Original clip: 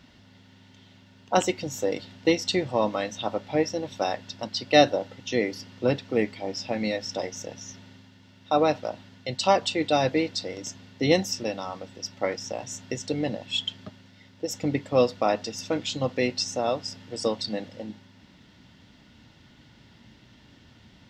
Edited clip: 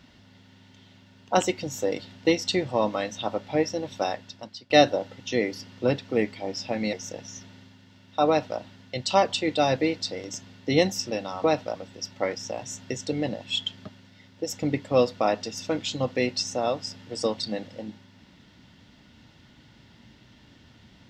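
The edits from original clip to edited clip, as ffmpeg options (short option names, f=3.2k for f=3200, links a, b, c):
-filter_complex "[0:a]asplit=5[a][b][c][d][e];[a]atrim=end=4.7,asetpts=PTS-STARTPTS,afade=t=out:st=4.02:d=0.68:silence=0.0944061[f];[b]atrim=start=4.7:end=6.932,asetpts=PTS-STARTPTS,afade=t=in:d=0.004:c=hsin:silence=0.0944061[g];[c]atrim=start=7.258:end=11.772[h];[d]atrim=start=8.608:end=8.932[i];[e]atrim=start=11.768[j];[f][g]concat=n=2:v=0:a=1[k];[k][h]acrossfade=d=0.004:c1=hsin:c2=hsin[l];[l][i]acrossfade=d=0.004:c1=hsin:c2=hsin[m];[m][j]acrossfade=d=0.004:c1=hsin:c2=hsin"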